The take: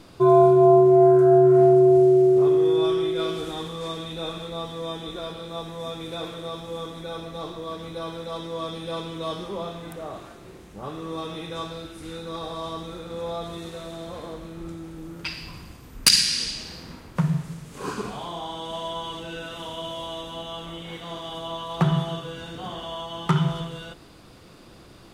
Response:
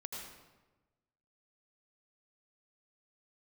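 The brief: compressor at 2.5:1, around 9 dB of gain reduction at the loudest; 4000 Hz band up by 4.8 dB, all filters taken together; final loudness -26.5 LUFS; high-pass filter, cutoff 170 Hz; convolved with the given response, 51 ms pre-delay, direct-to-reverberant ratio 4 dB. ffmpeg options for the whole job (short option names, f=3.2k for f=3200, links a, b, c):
-filter_complex "[0:a]highpass=170,equalizer=f=4k:t=o:g=6,acompressor=threshold=-21dB:ratio=2.5,asplit=2[a][b];[1:a]atrim=start_sample=2205,adelay=51[c];[b][c]afir=irnorm=-1:irlink=0,volume=-3dB[d];[a][d]amix=inputs=2:normalize=0,volume=-3.5dB"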